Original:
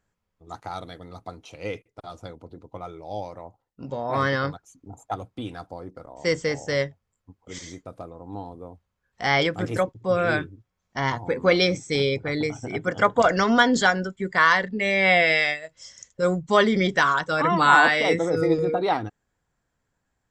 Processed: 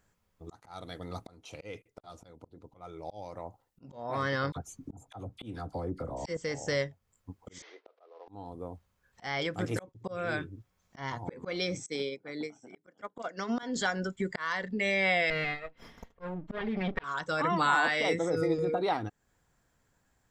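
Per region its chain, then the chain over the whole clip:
4.52–6.37 s: bass shelf 360 Hz +9.5 dB + doubling 14 ms -13 dB + phase dispersion lows, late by 42 ms, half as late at 1.2 kHz
7.62–8.28 s: CVSD coder 32 kbps + elliptic high-pass 410 Hz, stop band 60 dB + distance through air 290 m
11.86–13.63 s: high-pass 200 Hz 24 dB/octave + bass shelf 270 Hz +6 dB + upward expansion 2.5:1, over -29 dBFS
15.30–17.04 s: comb filter that takes the minimum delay 4.3 ms + distance through air 420 m
whole clip: treble shelf 7.4 kHz +5.5 dB; slow attack 537 ms; compression 2:1, threshold -39 dBFS; trim +4 dB

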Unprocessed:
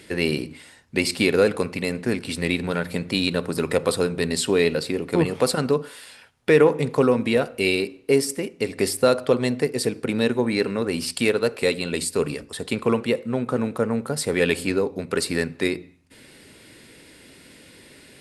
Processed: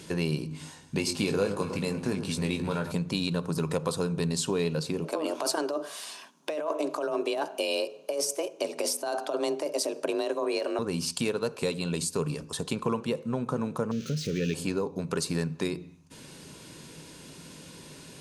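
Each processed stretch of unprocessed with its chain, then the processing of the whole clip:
0.50–2.92 s: doubling 20 ms -7 dB + echo whose repeats swap between lows and highs 105 ms, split 1.5 kHz, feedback 64%, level -11 dB
5.04–10.79 s: compressor with a negative ratio -22 dBFS + frequency shift +150 Hz
13.91–14.54 s: zero-crossing glitches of -13 dBFS + Butterworth band-stop 890 Hz, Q 0.68 + distance through air 240 m
whole clip: graphic EQ with 31 bands 160 Hz +12 dB, 1 kHz +8 dB, 2 kHz -10 dB, 6.3 kHz +10 dB; compression 2:1, threshold -32 dBFS

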